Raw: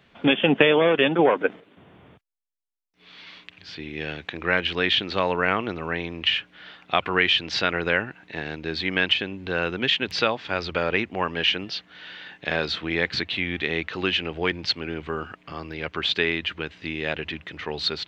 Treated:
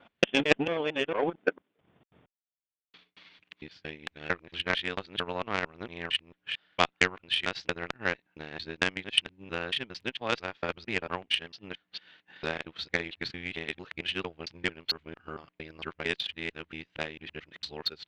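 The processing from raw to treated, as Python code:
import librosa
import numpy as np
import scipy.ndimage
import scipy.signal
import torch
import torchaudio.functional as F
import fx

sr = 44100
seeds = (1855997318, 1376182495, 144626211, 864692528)

y = fx.local_reverse(x, sr, ms=226.0)
y = fx.transient(y, sr, attack_db=7, sustain_db=-11)
y = fx.cheby_harmonics(y, sr, harmonics=(3,), levels_db=(-14,), full_scale_db=2.5)
y = y * librosa.db_to_amplitude(-5.0)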